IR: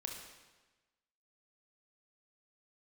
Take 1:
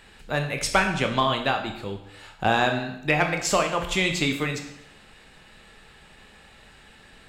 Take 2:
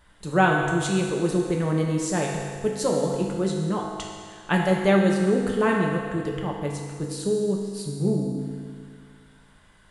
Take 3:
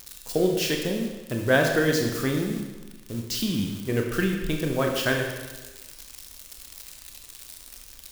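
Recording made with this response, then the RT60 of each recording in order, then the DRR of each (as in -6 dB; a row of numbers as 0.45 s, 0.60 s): 3; 0.75 s, 2.0 s, 1.2 s; 4.0 dB, -1.5 dB, 1.5 dB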